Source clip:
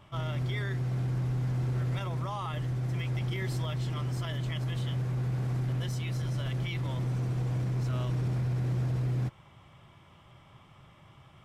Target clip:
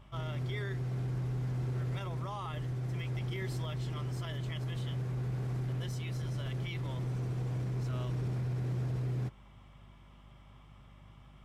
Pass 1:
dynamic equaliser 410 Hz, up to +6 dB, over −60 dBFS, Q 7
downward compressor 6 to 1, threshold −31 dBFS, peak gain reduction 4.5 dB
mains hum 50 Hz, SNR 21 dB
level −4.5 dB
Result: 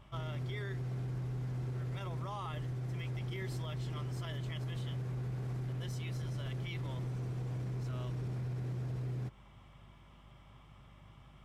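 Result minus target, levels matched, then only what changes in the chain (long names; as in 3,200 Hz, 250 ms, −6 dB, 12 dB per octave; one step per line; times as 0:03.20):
downward compressor: peak gain reduction +4.5 dB
remove: downward compressor 6 to 1, threshold −31 dBFS, peak gain reduction 4.5 dB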